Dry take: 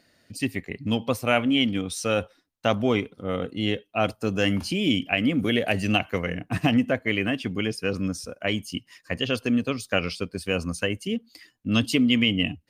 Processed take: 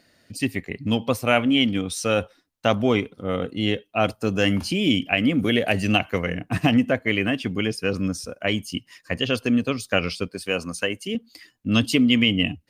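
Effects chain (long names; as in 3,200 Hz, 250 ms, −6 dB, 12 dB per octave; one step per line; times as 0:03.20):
0:10.28–0:11.15: high-pass filter 300 Hz 6 dB per octave
level +2.5 dB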